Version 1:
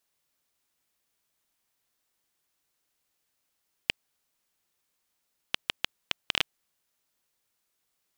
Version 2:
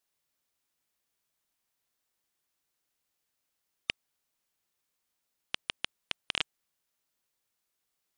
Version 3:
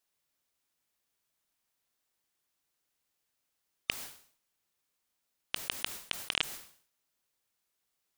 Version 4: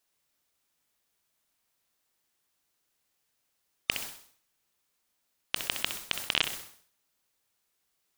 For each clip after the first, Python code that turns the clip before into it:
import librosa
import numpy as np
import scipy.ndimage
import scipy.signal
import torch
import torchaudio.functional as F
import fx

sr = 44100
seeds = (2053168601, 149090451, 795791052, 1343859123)

y1 = fx.spec_gate(x, sr, threshold_db=-30, keep='strong')
y1 = F.gain(torch.from_numpy(y1), -4.0).numpy()
y2 = fx.sustainer(y1, sr, db_per_s=110.0)
y3 = fx.room_flutter(y2, sr, wall_m=10.9, rt60_s=0.38)
y3 = F.gain(torch.from_numpy(y3), 4.0).numpy()